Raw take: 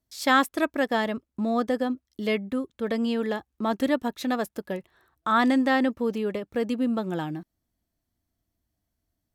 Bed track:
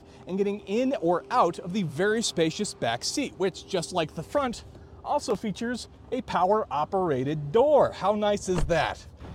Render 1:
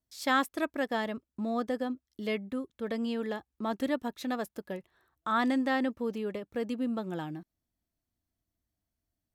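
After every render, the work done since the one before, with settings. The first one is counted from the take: trim -6.5 dB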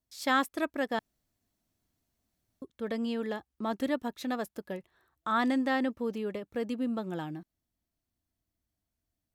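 0.99–2.62 s: room tone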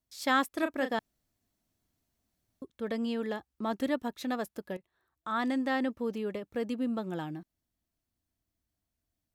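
0.49–0.91 s: doubling 34 ms -8 dB; 4.77–6.36 s: fade in equal-power, from -12.5 dB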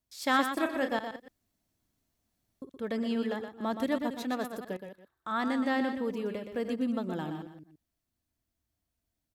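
chunks repeated in reverse 166 ms, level -11.5 dB; delay 121 ms -8 dB

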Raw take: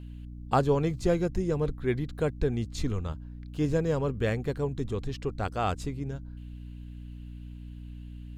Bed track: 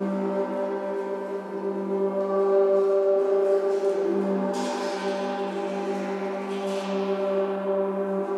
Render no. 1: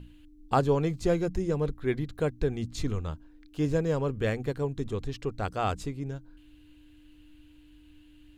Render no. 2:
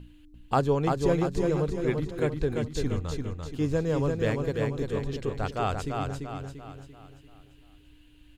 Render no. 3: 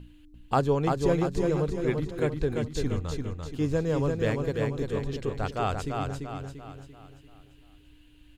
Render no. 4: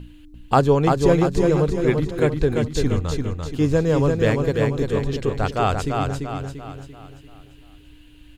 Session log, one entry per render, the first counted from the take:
hum notches 60/120/180/240 Hz
feedback delay 342 ms, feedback 45%, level -4 dB
no audible change
trim +8 dB

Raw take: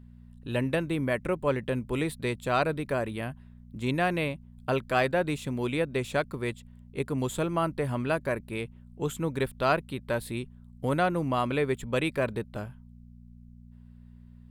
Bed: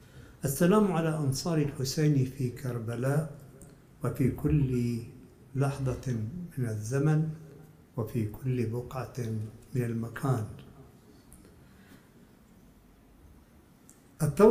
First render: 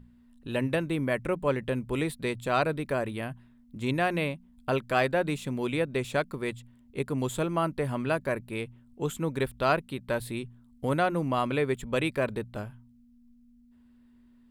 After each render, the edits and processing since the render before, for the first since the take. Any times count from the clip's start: de-hum 60 Hz, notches 3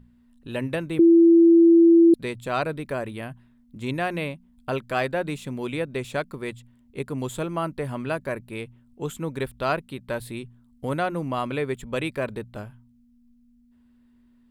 0.99–2.14 s: bleep 335 Hz -10.5 dBFS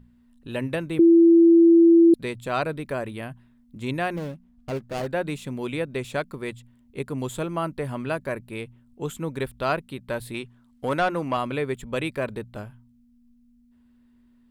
4.16–5.07 s: median filter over 41 samples; 10.34–11.37 s: overdrive pedal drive 13 dB, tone 4.3 kHz, clips at -12.5 dBFS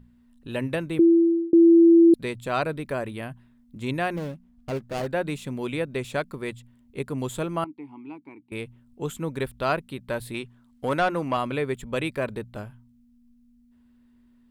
0.78–1.53 s: fade out equal-power; 7.64–8.52 s: vowel filter u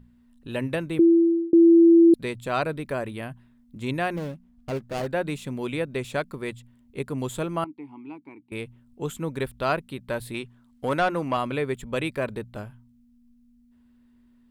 no audible change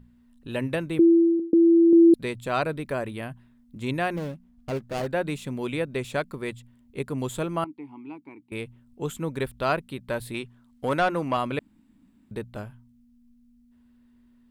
1.39–1.93 s: comb 4.1 ms, depth 68%; 11.59–12.31 s: room tone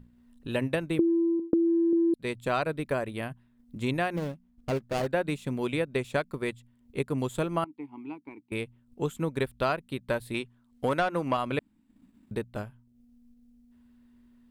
compression 6:1, threshold -23 dBFS, peak gain reduction 10 dB; transient shaper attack +2 dB, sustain -7 dB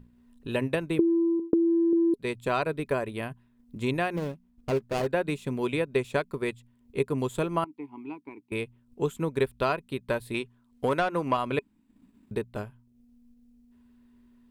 small resonant body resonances 410/1000/2500 Hz, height 6 dB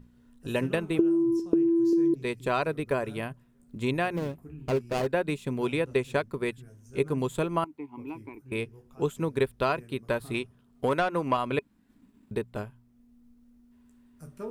add bed -18.5 dB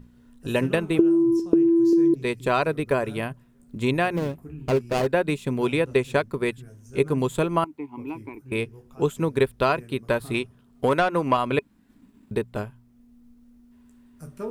trim +5 dB

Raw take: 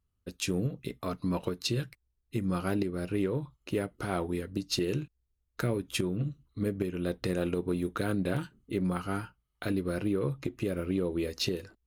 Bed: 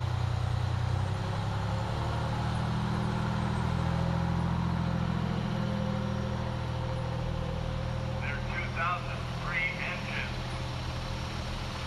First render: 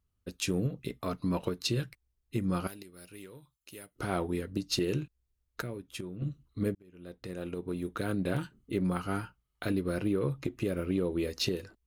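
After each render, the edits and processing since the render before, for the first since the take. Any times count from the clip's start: 2.67–3.96 s: pre-emphasis filter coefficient 0.9; 5.62–6.22 s: gain -9.5 dB; 6.75–8.44 s: fade in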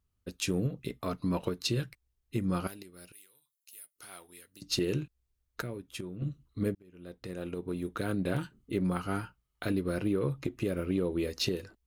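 3.12–4.62 s: pre-emphasis filter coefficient 0.97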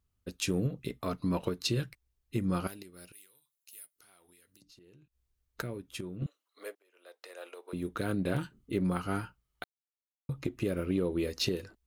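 3.94–5.60 s: compression, threshold -59 dBFS; 6.26–7.73 s: inverse Chebyshev high-pass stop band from 160 Hz, stop band 60 dB; 9.64–10.29 s: mute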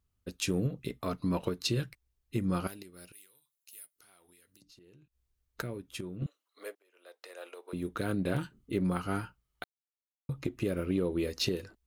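no audible change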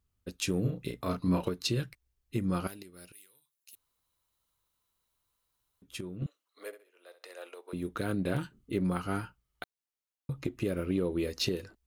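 0.61–1.48 s: doubling 33 ms -4 dB; 3.75–5.82 s: room tone; 6.66–7.44 s: flutter echo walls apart 11.3 m, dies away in 0.33 s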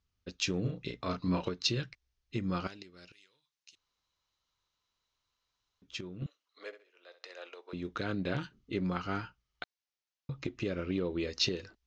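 steep low-pass 6.4 kHz 48 dB/octave; tilt shelf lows -3.5 dB, about 1.3 kHz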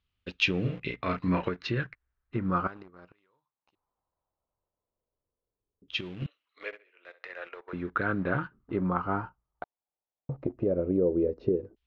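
in parallel at -5.5 dB: bit crusher 8-bit; on the sum: LFO low-pass saw down 0.17 Hz 410–3200 Hz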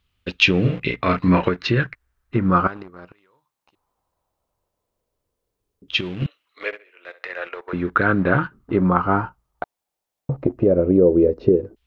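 trim +11 dB; peak limiter -2 dBFS, peak gain reduction 1.5 dB

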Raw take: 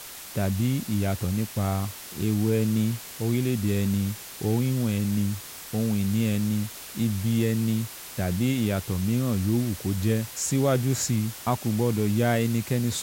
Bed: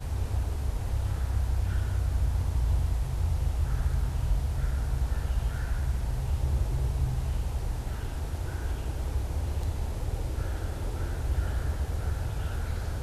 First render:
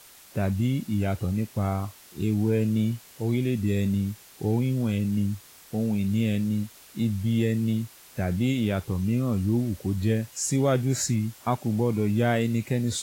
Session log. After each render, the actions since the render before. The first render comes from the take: noise print and reduce 10 dB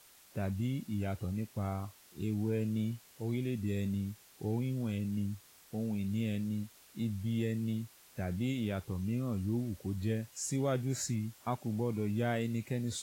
trim -9.5 dB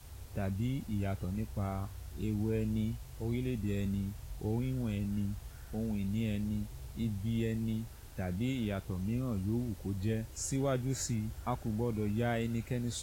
add bed -18 dB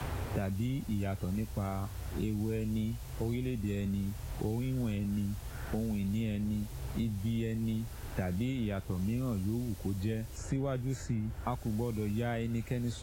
three bands compressed up and down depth 100%

